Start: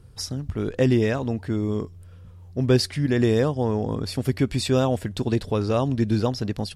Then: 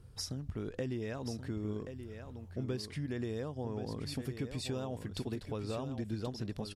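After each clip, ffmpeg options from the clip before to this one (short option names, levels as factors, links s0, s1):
-filter_complex "[0:a]acompressor=threshold=0.0355:ratio=5,asplit=2[s0][s1];[s1]aecho=0:1:1079:0.355[s2];[s0][s2]amix=inputs=2:normalize=0,volume=0.473"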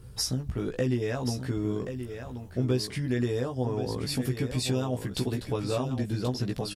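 -filter_complex "[0:a]highshelf=f=9500:g=7.5,asplit=2[s0][s1];[s1]adelay=16,volume=0.708[s2];[s0][s2]amix=inputs=2:normalize=0,volume=2.24"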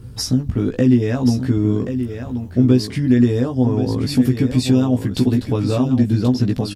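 -af "equalizer=f=100:t=o:w=0.67:g=8,equalizer=f=250:t=o:w=0.67:g=11,equalizer=f=10000:t=o:w=0.67:g=-4,volume=2"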